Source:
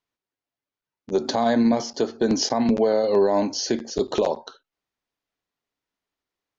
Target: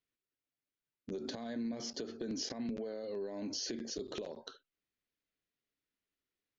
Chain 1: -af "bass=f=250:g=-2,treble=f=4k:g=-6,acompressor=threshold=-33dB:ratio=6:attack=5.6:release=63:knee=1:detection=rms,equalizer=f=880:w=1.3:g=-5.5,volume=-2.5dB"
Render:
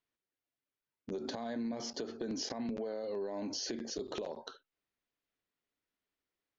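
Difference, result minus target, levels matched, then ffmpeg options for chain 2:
1000 Hz band +5.0 dB
-af "bass=f=250:g=-2,treble=f=4k:g=-6,acompressor=threshold=-33dB:ratio=6:attack=5.6:release=63:knee=1:detection=rms,equalizer=f=880:w=1.3:g=-13.5,volume=-2.5dB"

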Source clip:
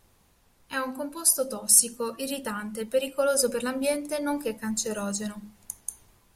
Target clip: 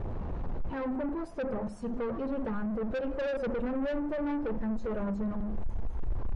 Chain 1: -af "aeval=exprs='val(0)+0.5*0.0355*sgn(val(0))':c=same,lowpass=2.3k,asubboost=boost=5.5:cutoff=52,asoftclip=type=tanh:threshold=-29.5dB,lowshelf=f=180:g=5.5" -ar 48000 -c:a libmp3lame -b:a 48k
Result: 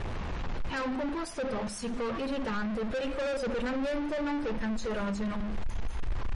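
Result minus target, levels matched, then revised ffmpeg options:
2000 Hz band +5.5 dB
-af "aeval=exprs='val(0)+0.5*0.0355*sgn(val(0))':c=same,lowpass=760,asubboost=boost=5.5:cutoff=52,asoftclip=type=tanh:threshold=-29.5dB,lowshelf=f=180:g=5.5" -ar 48000 -c:a libmp3lame -b:a 48k

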